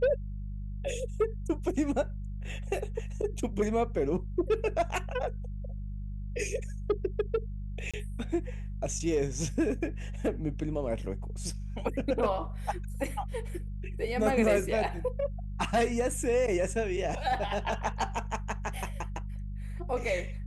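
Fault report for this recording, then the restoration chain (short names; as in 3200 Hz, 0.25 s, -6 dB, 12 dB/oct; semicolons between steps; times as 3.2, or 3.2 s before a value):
hum 50 Hz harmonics 4 -37 dBFS
7.91–7.94 gap 26 ms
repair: de-hum 50 Hz, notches 4; interpolate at 7.91, 26 ms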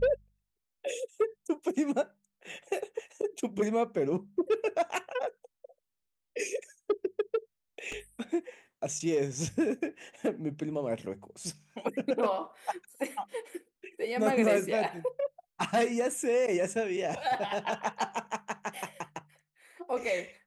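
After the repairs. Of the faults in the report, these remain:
none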